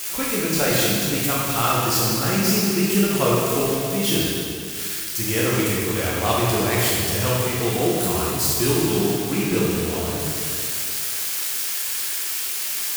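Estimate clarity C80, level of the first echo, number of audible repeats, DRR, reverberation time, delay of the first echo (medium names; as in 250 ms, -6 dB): -1.0 dB, no echo, no echo, -6.5 dB, 2.4 s, no echo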